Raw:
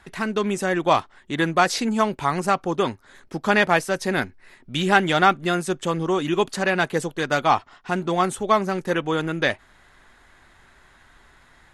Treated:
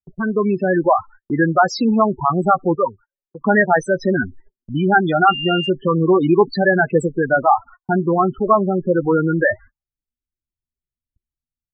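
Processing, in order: AGC gain up to 6 dB; low-pass opened by the level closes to 330 Hz, open at -15.5 dBFS; 8.08–8.97 air absorption 460 m; loudest bins only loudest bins 8; 5.27–5.68 whine 2800 Hz -28 dBFS; in parallel at -3 dB: compressor, threshold -26 dBFS, peak gain reduction 13.5 dB; 2.75–3.41 on the sum: resonant low shelf 430 Hz -12 dB, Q 3; gate -38 dBFS, range -46 dB; gain +2.5 dB

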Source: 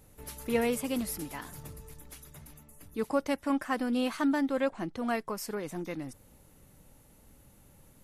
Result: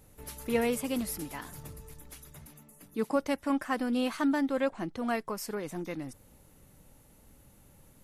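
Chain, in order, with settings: 2.46–3.16 resonant low shelf 120 Hz -10.5 dB, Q 1.5

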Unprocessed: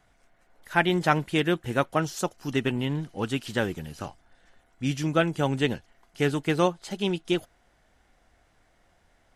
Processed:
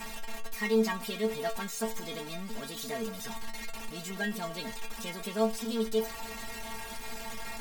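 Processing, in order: zero-crossing step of -20.5 dBFS; metallic resonator 180 Hz, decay 0.26 s, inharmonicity 0.002; varispeed +23%; gain -2 dB

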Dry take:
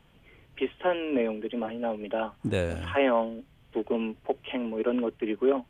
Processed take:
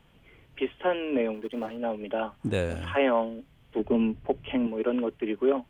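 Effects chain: 1.34–1.77 G.711 law mismatch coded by A; 3.79–4.67 tone controls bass +12 dB, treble -4 dB

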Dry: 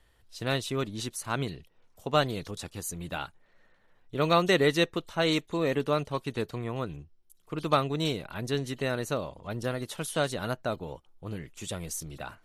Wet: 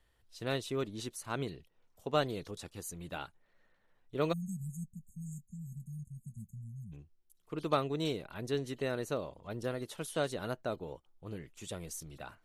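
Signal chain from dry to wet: spectral delete 4.33–6.92, 220–6400 Hz; dynamic EQ 400 Hz, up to +5 dB, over -43 dBFS, Q 1.2; gain -7.5 dB

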